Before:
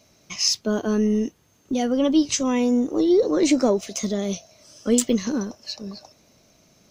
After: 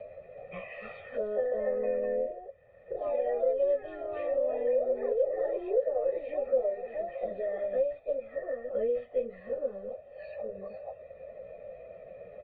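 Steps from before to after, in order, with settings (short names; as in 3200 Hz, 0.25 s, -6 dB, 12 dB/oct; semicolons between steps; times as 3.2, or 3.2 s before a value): self-modulated delay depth 0.076 ms; in parallel at 0 dB: compressor, threshold -27 dBFS, peak gain reduction 12.5 dB; on the sum: graphic EQ 125/250/2000 Hz -7/-8/-10 dB; plain phase-vocoder stretch 1.8×; echoes that change speed 0.374 s, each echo +3 st, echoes 3; vocal tract filter e; low shelf 62 Hz +7.5 dB; comb 1.6 ms, depth 78%; three-band squash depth 70%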